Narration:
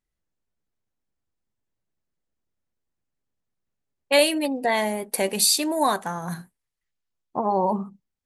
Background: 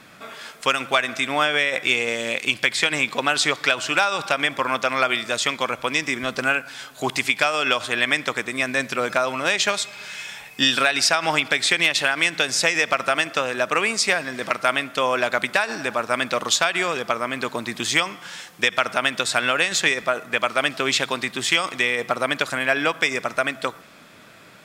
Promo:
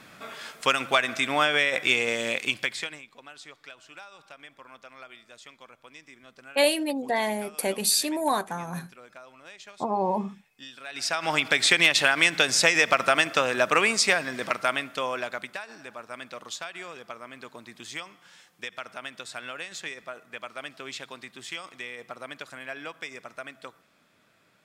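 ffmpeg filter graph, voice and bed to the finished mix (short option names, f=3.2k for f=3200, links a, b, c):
-filter_complex "[0:a]adelay=2450,volume=-3.5dB[a];[1:a]volume=23dB,afade=t=out:st=2.27:d=0.75:silence=0.0668344,afade=t=in:st=10.83:d=0.83:silence=0.0530884,afade=t=out:st=13.81:d=1.79:silence=0.149624[b];[a][b]amix=inputs=2:normalize=0"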